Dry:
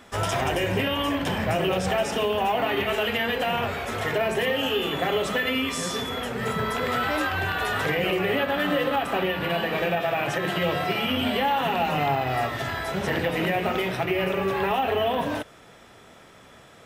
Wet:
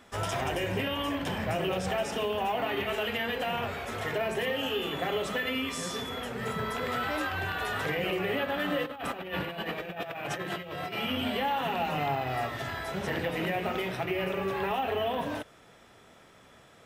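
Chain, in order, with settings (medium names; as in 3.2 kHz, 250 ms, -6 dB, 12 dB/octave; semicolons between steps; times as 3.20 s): 8.84–10.98 s: compressor with a negative ratio -29 dBFS, ratio -0.5; trim -6 dB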